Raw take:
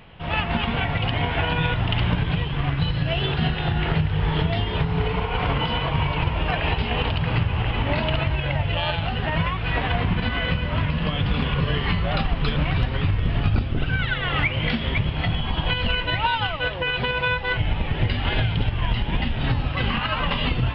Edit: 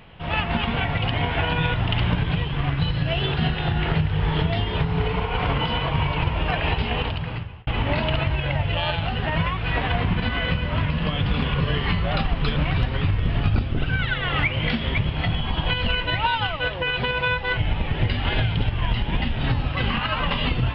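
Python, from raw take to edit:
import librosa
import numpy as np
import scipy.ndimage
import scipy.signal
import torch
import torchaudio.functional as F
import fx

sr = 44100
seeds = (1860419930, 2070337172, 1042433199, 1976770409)

y = fx.edit(x, sr, fx.fade_out_span(start_s=6.88, length_s=0.79), tone=tone)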